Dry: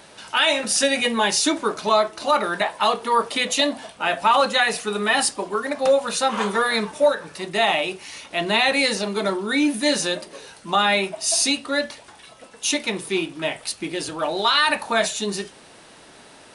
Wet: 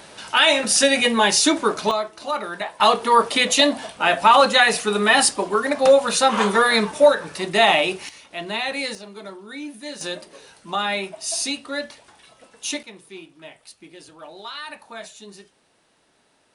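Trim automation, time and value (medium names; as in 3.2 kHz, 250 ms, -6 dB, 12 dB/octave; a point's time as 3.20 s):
+3 dB
from 1.91 s -6 dB
from 2.80 s +4 dB
from 8.09 s -7 dB
from 8.95 s -14 dB
from 10.01 s -5 dB
from 12.83 s -16 dB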